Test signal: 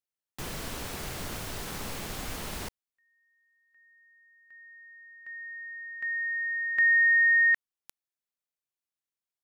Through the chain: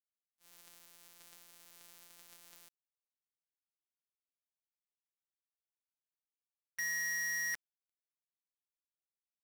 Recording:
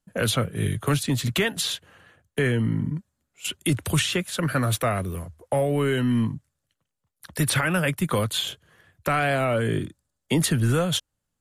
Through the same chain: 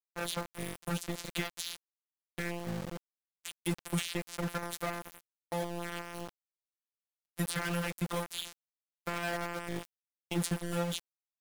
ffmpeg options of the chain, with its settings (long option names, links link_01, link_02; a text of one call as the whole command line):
ffmpeg -i in.wav -af "afftfilt=real='hypot(re,im)*cos(PI*b)':imag='0':win_size=1024:overlap=0.75,aeval=exprs='val(0)*gte(abs(val(0)),0.0473)':channel_layout=same,agate=range=-33dB:threshold=-31dB:ratio=3:release=236:detection=rms,volume=-8dB" out.wav